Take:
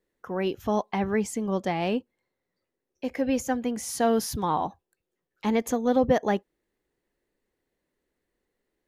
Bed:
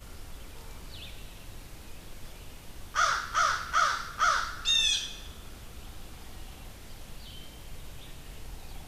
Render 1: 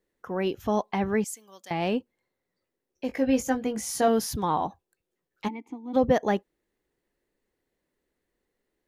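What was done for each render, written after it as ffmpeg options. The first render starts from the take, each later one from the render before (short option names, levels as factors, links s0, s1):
-filter_complex "[0:a]asettb=1/sr,asplit=3[s0][s1][s2];[s0]atrim=end=1.244[s3];[s1]atrim=start=1.24:end=1.71,asetpts=PTS-STARTPTS,afade=t=in:d=0.004:c=qsin,afade=t=out:st=0.466:d=0.004:c=qsin,aderivative[s4];[s2]atrim=start=1.706[s5];[s3][s4]acrossfade=d=0.004:c1=hsin:c2=qsin[s6];[s6][s5]acrossfade=d=0.004:c1=qsin:c2=hsin,asettb=1/sr,asplit=3[s7][s8][s9];[s7]atrim=end=3.074[s10];[s8]atrim=start=3.07:end=4.08,asetpts=PTS-STARTPTS,afade=t=in:d=0.004:c=qsin,afade=t=out:st=1.006:d=0.004:c=qsin,asplit=2[s11][s12];[s12]adelay=19,volume=0.501[s13];[s11][s13]amix=inputs=2:normalize=0,atrim=end_sample=44541[s14];[s9]atrim=start=4.076[s15];[s10][s14]acrossfade=d=0.004:c1=hsin:c2=qsin[s16];[s16][s15]acrossfade=d=0.004:c1=qsin:c2=hsin,asplit=3[s17][s18][s19];[s17]afade=t=out:st=5.47:d=0.02[s20];[s18]asplit=3[s21][s22][s23];[s21]bandpass=f=300:t=q:w=8,volume=1[s24];[s22]bandpass=f=870:t=q:w=8,volume=0.501[s25];[s23]bandpass=f=2240:t=q:w=8,volume=0.355[s26];[s24][s25][s26]amix=inputs=3:normalize=0,afade=t=in:st=5.47:d=0.02,afade=t=out:st=5.93:d=0.02[s27];[s19]afade=t=in:st=5.93:d=0.02[s28];[s20][s27][s28]amix=inputs=3:normalize=0"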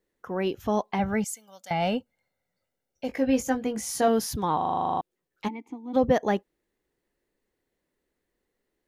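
-filter_complex "[0:a]asettb=1/sr,asplit=3[s0][s1][s2];[s0]atrim=end=0.994[s3];[s1]atrim=start=0.99:end=3.08,asetpts=PTS-STARTPTS,afade=t=in:d=0.004:c=qsin,afade=t=out:st=2.086:d=0.004:c=qsin,aecho=1:1:1.4:0.65,atrim=end_sample=92169[s4];[s2]atrim=start=3.076[s5];[s3][s4]acrossfade=d=0.004:c1=hsin:c2=qsin[s6];[s6][s5]acrossfade=d=0.004:c1=qsin:c2=hsin,asplit=12[s7][s8][s9][s10][s11][s12][s13][s14][s15][s16][s17][s18];[s7]atrim=end=4.612[s19];[s8]atrim=start=4.568:end=4.612[s20];[s9]atrim=start=4.568:end=4.612[s21];[s10]atrim=start=4.568:end=4.612[s22];[s11]atrim=start=4.568:end=4.612[s23];[s12]atrim=start=4.568:end=4.612[s24];[s13]atrim=start=4.568:end=4.612[s25];[s14]atrim=start=4.568:end=4.612[s26];[s15]atrim=start=4.568:end=4.612[s27];[s16]atrim=start=4.568:end=4.612[s28];[s17]atrim=start=4.568:end=4.612[s29];[s18]atrim=start=5.008[s30];[s19][s20]acrossfade=d=0.004:c1=hsin:c2=hsin[s31];[s31][s21]acrossfade=d=0.004:c1=hsin:c2=hsin[s32];[s32][s22]acrossfade=d=0.004:c1=hsin:c2=hsin[s33];[s33][s23]acrossfade=d=0.004:c1=hsin:c2=hsin[s34];[s34][s24]acrossfade=d=0.004:c1=hsin:c2=hsin[s35];[s35][s25]acrossfade=d=0.004:c1=hsin:c2=hsin[s36];[s36][s26]acrossfade=d=0.004:c1=hsin:c2=hsin[s37];[s37][s27]acrossfade=d=0.004:c1=hsin:c2=hsin[s38];[s38][s28]acrossfade=d=0.004:c1=hsin:c2=hsin[s39];[s39][s29]acrossfade=d=0.004:c1=hsin:c2=hsin[s40];[s40][s30]acrossfade=d=0.004:c1=hsin:c2=hsin"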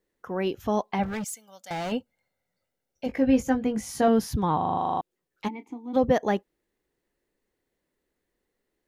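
-filter_complex "[0:a]asettb=1/sr,asplit=3[s0][s1][s2];[s0]atrim=end=1.034[s3];[s1]atrim=start=1.03:end=1.92,asetpts=PTS-STARTPTS,afade=t=in:d=0.004:c=qsin,afade=t=out:st=0.886:d=0.004:c=qsin,asoftclip=type=hard:threshold=0.0355[s4];[s2]atrim=start=1.916[s5];[s3][s4]acrossfade=d=0.004:c1=hsin:c2=qsin[s6];[s6][s5]acrossfade=d=0.004:c1=qsin:c2=hsin,asettb=1/sr,asplit=3[s7][s8][s9];[s7]atrim=end=3.064[s10];[s8]atrim=start=3.06:end=4.78,asetpts=PTS-STARTPTS,afade=t=in:d=0.004:c=qsin,afade=t=out:st=1.716:d=0.004:c=qsin,bass=f=250:g=7,treble=f=4000:g=-6[s11];[s9]atrim=start=4.776[s12];[s10][s11]acrossfade=d=0.004:c1=hsin:c2=qsin[s13];[s13][s12]acrossfade=d=0.004:c1=qsin:c2=hsin,asettb=1/sr,asplit=3[s14][s15][s16];[s14]atrim=end=5.524[s17];[s15]atrim=start=5.52:end=5.98,asetpts=PTS-STARTPTS,afade=t=in:d=0.004:c=qsin,afade=t=out:st=0.456:d=0.004:c=qsin,asplit=2[s18][s19];[s19]adelay=29,volume=0.224[s20];[s18][s20]amix=inputs=2:normalize=0,atrim=end_sample=20286[s21];[s16]atrim=start=5.976[s22];[s17][s21]acrossfade=d=0.004:c1=hsin:c2=qsin[s23];[s23][s22]acrossfade=d=0.004:c1=qsin:c2=hsin"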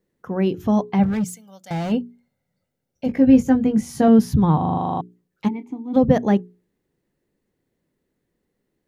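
-af "equalizer=f=150:t=o:w=2.2:g=14,bandreject=f=60:t=h:w=6,bandreject=f=120:t=h:w=6,bandreject=f=180:t=h:w=6,bandreject=f=240:t=h:w=6,bandreject=f=300:t=h:w=6,bandreject=f=360:t=h:w=6,bandreject=f=420:t=h:w=6"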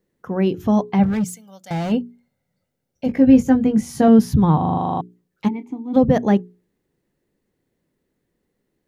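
-af "volume=1.19,alimiter=limit=0.708:level=0:latency=1"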